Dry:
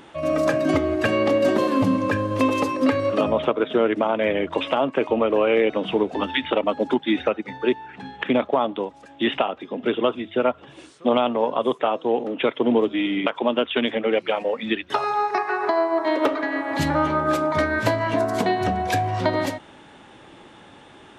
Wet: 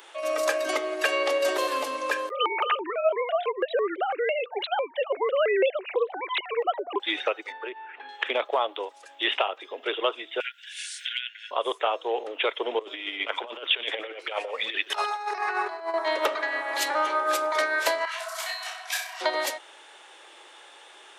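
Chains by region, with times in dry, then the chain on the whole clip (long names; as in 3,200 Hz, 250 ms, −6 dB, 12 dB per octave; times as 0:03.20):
0:02.29–0:07.00: three sine waves on the formant tracks + pitch modulation by a square or saw wave square 3 Hz, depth 250 cents
0:07.52–0:08.09: low-pass filter 2,800 Hz 24 dB per octave + downward compressor 4 to 1, threshold −25 dBFS
0:10.40–0:11.51: linear-phase brick-wall high-pass 1,400 Hz + multiband upward and downward compressor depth 100%
0:12.79–0:15.94: compressor whose output falls as the input rises −26 dBFS, ratio −0.5 + single-tap delay 124 ms −14.5 dB
0:18.05–0:19.21: high-pass filter 990 Hz 24 dB per octave + flutter between parallel walls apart 5.5 metres, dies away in 0.46 s + micro pitch shift up and down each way 47 cents
whole clip: Butterworth high-pass 370 Hz 36 dB per octave; spectral tilt +3 dB per octave; level −2.5 dB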